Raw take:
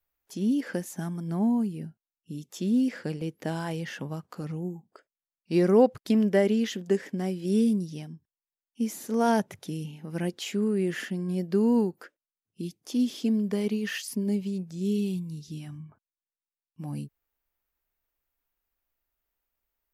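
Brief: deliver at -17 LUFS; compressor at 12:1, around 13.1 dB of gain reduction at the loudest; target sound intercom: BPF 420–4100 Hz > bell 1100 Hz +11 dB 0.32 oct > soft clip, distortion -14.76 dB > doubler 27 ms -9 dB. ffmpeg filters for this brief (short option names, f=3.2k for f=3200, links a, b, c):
-filter_complex "[0:a]acompressor=threshold=-27dB:ratio=12,highpass=420,lowpass=4.1k,equalizer=f=1.1k:t=o:w=0.32:g=11,asoftclip=threshold=-30dB,asplit=2[a][b];[b]adelay=27,volume=-9dB[c];[a][c]amix=inputs=2:normalize=0,volume=24dB"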